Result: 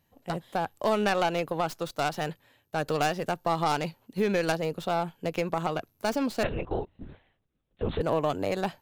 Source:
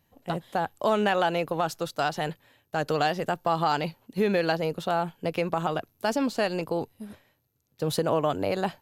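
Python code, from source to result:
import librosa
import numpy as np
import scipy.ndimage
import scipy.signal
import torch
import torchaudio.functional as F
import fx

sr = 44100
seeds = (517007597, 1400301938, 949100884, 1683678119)

y = fx.tracing_dist(x, sr, depth_ms=0.16)
y = fx.lpc_vocoder(y, sr, seeds[0], excitation='whisper', order=10, at=(6.43, 8.01))
y = F.gain(torch.from_numpy(y), -2.0).numpy()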